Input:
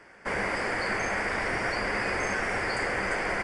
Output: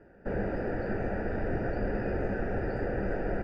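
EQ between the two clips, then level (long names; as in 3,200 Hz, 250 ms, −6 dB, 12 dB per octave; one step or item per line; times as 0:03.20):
moving average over 41 samples
high-frequency loss of the air 84 metres
low-shelf EQ 80 Hz +6 dB
+4.0 dB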